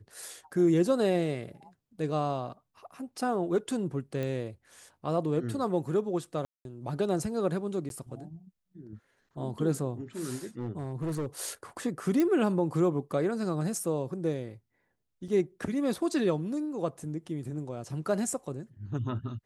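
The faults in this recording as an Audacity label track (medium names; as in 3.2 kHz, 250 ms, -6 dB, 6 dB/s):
4.230000	4.230000	pop -22 dBFS
6.450000	6.650000	dropout 202 ms
7.890000	7.900000	dropout 12 ms
10.590000	11.500000	clipped -28 dBFS
12.200000	12.200000	pop -16 dBFS
15.280000	15.280000	dropout 4.7 ms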